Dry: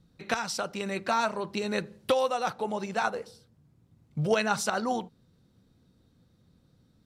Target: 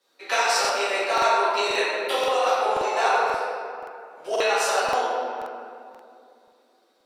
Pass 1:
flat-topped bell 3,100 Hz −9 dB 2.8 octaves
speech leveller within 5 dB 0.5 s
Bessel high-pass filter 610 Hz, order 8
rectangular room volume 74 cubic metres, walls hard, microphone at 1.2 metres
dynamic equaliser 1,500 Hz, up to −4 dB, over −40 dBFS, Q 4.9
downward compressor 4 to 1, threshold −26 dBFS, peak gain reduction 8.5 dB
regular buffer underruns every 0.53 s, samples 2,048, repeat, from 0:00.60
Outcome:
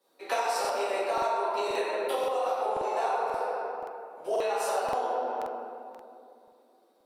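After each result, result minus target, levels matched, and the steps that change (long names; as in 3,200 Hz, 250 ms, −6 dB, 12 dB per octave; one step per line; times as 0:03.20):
downward compressor: peak gain reduction +8.5 dB; 4,000 Hz band −6.0 dB
remove: downward compressor 4 to 1, threshold −26 dBFS, peak gain reduction 8.5 dB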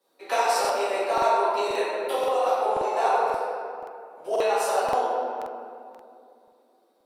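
4,000 Hz band −6.5 dB
remove: flat-topped bell 3,100 Hz −9 dB 2.8 octaves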